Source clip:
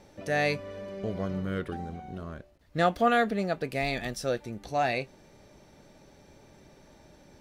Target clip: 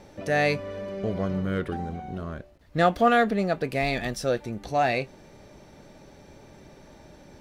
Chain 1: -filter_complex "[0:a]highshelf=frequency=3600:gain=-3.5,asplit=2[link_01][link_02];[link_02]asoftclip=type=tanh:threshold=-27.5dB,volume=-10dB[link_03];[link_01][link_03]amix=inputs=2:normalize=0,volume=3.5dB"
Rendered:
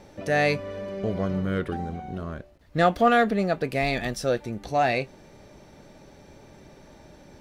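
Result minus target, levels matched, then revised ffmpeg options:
soft clipping: distortion −5 dB
-filter_complex "[0:a]highshelf=frequency=3600:gain=-3.5,asplit=2[link_01][link_02];[link_02]asoftclip=type=tanh:threshold=-37.5dB,volume=-10dB[link_03];[link_01][link_03]amix=inputs=2:normalize=0,volume=3.5dB"

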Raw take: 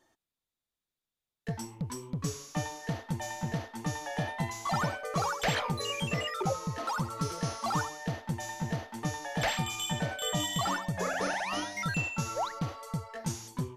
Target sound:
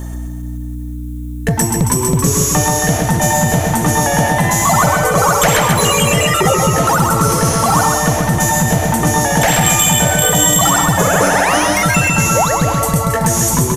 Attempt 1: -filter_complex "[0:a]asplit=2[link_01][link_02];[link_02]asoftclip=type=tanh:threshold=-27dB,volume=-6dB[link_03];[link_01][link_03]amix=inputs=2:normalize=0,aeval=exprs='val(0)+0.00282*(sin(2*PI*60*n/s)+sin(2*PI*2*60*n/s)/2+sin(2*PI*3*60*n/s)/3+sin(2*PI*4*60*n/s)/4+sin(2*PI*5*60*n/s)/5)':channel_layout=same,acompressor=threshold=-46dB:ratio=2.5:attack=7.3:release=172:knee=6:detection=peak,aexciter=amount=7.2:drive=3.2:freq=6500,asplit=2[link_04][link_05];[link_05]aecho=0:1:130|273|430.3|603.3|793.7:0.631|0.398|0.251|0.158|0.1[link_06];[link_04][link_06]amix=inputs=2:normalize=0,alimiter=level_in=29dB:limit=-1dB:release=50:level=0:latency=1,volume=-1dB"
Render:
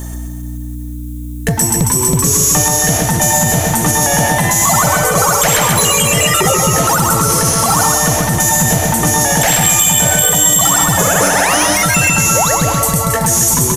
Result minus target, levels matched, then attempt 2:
8,000 Hz band +2.5 dB
-filter_complex "[0:a]asplit=2[link_01][link_02];[link_02]asoftclip=type=tanh:threshold=-27dB,volume=-6dB[link_03];[link_01][link_03]amix=inputs=2:normalize=0,aeval=exprs='val(0)+0.00282*(sin(2*PI*60*n/s)+sin(2*PI*2*60*n/s)/2+sin(2*PI*3*60*n/s)/3+sin(2*PI*4*60*n/s)/4+sin(2*PI*5*60*n/s)/5)':channel_layout=same,acompressor=threshold=-46dB:ratio=2.5:attack=7.3:release=172:knee=6:detection=peak,highshelf=frequency=3500:gain=-8.5,aexciter=amount=7.2:drive=3.2:freq=6500,asplit=2[link_04][link_05];[link_05]aecho=0:1:130|273|430.3|603.3|793.7:0.631|0.398|0.251|0.158|0.1[link_06];[link_04][link_06]amix=inputs=2:normalize=0,alimiter=level_in=29dB:limit=-1dB:release=50:level=0:latency=1,volume=-1dB"

